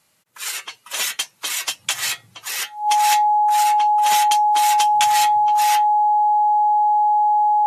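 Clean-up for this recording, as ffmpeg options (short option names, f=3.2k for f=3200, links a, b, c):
-af "bandreject=f=840:w=30"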